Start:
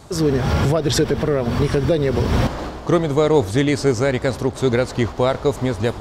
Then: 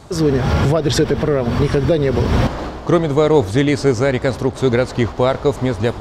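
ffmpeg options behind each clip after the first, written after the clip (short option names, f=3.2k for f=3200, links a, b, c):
-af "highshelf=f=7.5k:g=-7,volume=2.5dB"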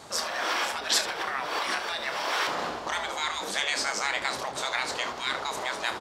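-filter_complex "[0:a]afftfilt=real='re*lt(hypot(re,im),0.282)':imag='im*lt(hypot(re,im),0.282)':win_size=1024:overlap=0.75,highpass=f=770:p=1,asplit=2[a][b];[b]aecho=0:1:30|75:0.355|0.224[c];[a][c]amix=inputs=2:normalize=0"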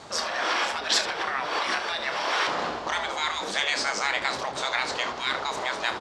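-af "lowpass=6.4k,volume=2.5dB"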